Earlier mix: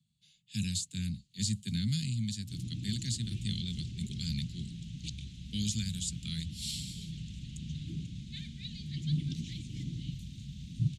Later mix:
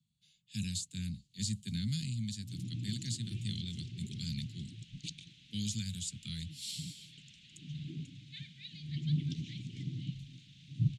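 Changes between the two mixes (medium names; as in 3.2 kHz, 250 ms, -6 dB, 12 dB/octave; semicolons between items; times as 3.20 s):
speech -3.5 dB; first sound: add brick-wall FIR band-stop 560–1700 Hz; second sound: add band-pass filter 2.2 kHz, Q 0.93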